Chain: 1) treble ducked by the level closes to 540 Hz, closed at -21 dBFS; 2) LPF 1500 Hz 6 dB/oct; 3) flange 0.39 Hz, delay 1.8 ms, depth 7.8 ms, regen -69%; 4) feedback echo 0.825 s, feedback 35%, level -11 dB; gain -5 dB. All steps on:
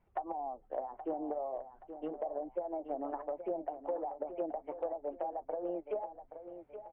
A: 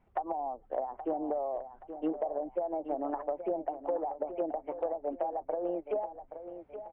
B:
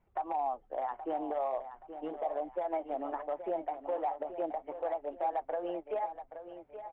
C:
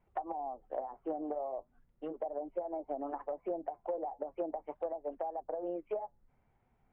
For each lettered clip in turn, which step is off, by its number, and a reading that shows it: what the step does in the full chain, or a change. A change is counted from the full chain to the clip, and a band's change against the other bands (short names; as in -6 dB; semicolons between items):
3, loudness change +4.5 LU; 1, momentary loudness spread change +1 LU; 4, momentary loudness spread change -4 LU